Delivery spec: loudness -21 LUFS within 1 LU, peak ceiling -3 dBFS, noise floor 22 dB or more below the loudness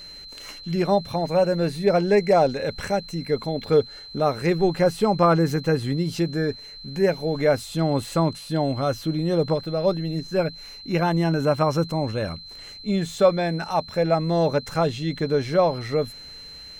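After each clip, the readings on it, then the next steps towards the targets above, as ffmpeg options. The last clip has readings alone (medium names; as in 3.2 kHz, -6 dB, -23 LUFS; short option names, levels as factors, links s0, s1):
steady tone 4.1 kHz; tone level -39 dBFS; loudness -23.0 LUFS; peak level -6.5 dBFS; loudness target -21.0 LUFS
-> -af "bandreject=f=4100:w=30"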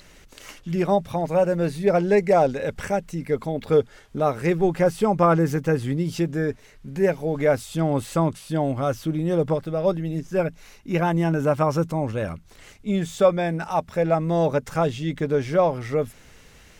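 steady tone not found; loudness -23.0 LUFS; peak level -6.5 dBFS; loudness target -21.0 LUFS
-> -af "volume=1.26"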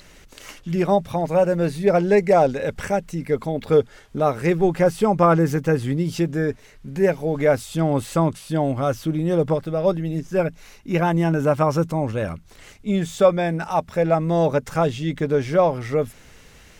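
loudness -21.0 LUFS; peak level -4.5 dBFS; noise floor -49 dBFS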